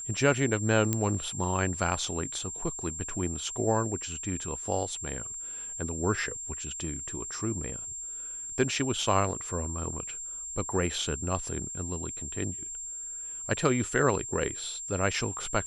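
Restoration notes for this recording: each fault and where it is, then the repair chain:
whistle 7,400 Hz −36 dBFS
0:00.93: click −12 dBFS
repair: click removal
notch filter 7,400 Hz, Q 30

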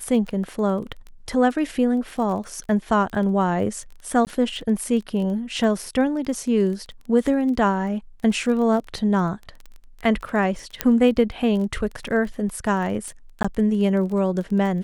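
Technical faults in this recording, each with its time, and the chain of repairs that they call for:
surface crackle 20 per second −30 dBFS
0:04.25–0:04.27: drop-out 18 ms
0:10.81: click −4 dBFS
0:13.43–0:13.45: drop-out 15 ms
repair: click removal
repair the gap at 0:04.25, 18 ms
repair the gap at 0:13.43, 15 ms

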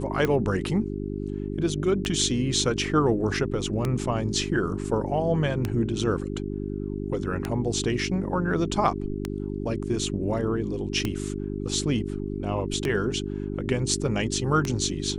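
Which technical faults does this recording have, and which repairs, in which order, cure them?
mains hum 50 Hz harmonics 8 −31 dBFS
scratch tick 33 1/3 rpm −12 dBFS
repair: click removal
hum removal 50 Hz, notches 8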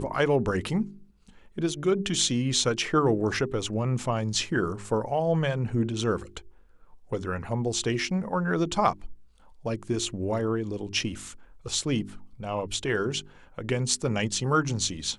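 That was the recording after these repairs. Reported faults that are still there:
none of them is left

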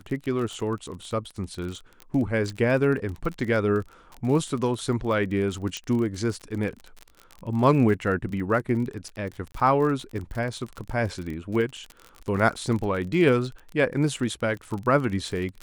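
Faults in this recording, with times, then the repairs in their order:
surface crackle 38 per second −31 dBFS
0:05.77: click −17 dBFS
0:09.52–0:09.54: drop-out 24 ms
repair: click removal
repair the gap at 0:09.52, 24 ms

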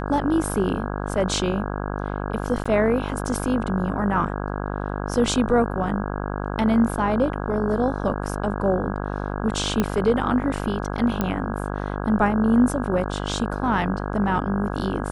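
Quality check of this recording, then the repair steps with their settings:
mains buzz 50 Hz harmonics 33 −28 dBFS
0:02.64–0:02.65: drop-out 15 ms
0:09.80: click −8 dBFS
0:11.21: click −10 dBFS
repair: click removal
hum removal 50 Hz, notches 33
repair the gap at 0:02.64, 15 ms

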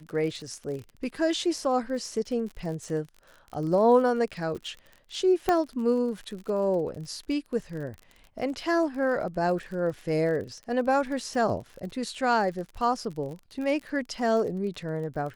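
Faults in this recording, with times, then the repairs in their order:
surface crackle 42 per second −36 dBFS
0:05.49: click −11 dBFS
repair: click removal

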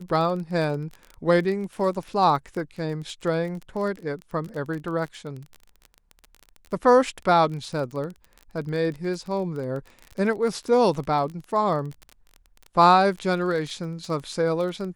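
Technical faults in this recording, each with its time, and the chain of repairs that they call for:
surface crackle 23 per second −31 dBFS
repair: click removal

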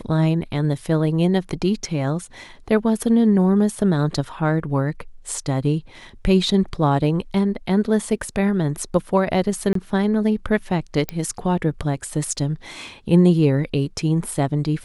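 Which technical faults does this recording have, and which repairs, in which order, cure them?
0:09.73–0:09.75: drop-out 23 ms
0:11.09: click −9 dBFS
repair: click removal
repair the gap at 0:09.73, 23 ms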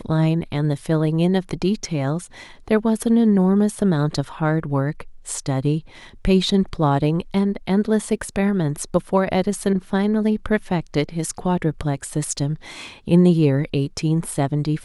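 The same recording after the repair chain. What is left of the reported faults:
0:11.09: click

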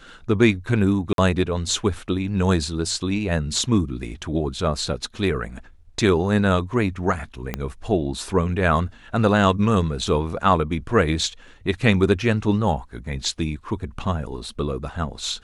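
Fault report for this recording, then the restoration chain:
0:01.13–0:01.18: drop-out 52 ms
0:07.54: click −11 dBFS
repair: click removal
repair the gap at 0:01.13, 52 ms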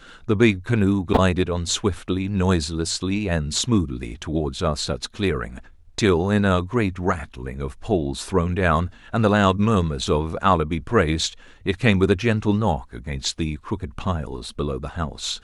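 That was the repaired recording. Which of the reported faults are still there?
0:07.54: click

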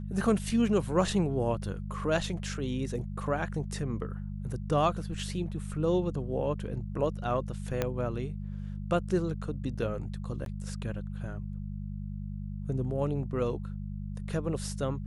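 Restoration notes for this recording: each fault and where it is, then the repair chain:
mains hum 50 Hz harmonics 4 −37 dBFS
0:07.82: click −14 dBFS
0:10.45–0:10.46: drop-out 12 ms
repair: click removal
hum removal 50 Hz, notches 4
repair the gap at 0:10.45, 12 ms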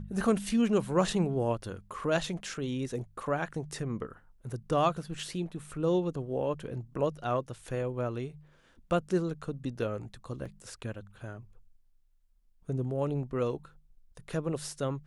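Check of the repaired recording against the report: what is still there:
0:07.82: click

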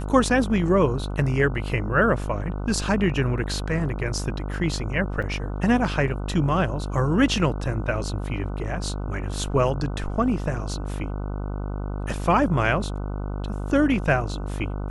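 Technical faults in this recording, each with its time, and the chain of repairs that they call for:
mains buzz 50 Hz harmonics 30 −29 dBFS
0:05.22: drop-out 4.7 ms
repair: hum removal 50 Hz, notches 30
repair the gap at 0:05.22, 4.7 ms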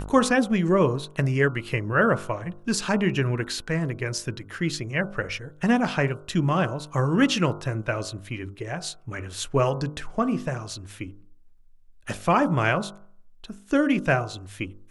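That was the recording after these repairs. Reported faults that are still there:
none of them is left

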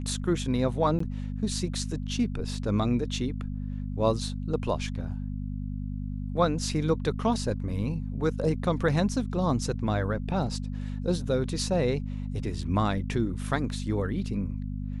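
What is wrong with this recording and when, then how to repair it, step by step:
mains hum 50 Hz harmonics 5 −33 dBFS
0:00.99–0:01.00: drop-out 14 ms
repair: hum removal 50 Hz, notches 5
repair the gap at 0:00.99, 14 ms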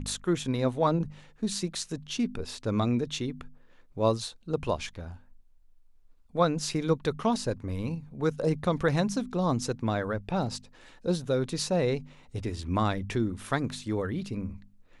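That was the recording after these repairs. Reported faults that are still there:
none of them is left

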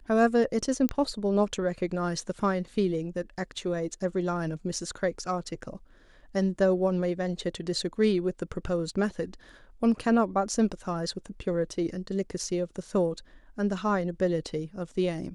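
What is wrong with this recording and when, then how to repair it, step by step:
0:00.89: click −14 dBFS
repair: click removal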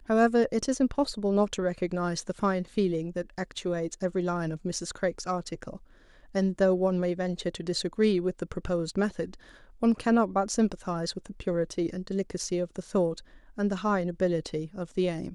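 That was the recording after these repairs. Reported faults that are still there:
0:00.89: click

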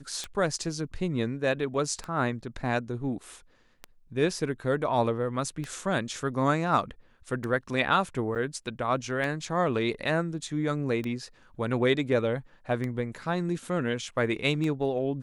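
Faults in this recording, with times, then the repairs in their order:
scratch tick 33 1/3 rpm −20 dBFS
0:08.35–0:08.36: drop-out 7.7 ms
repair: click removal
repair the gap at 0:08.35, 7.7 ms

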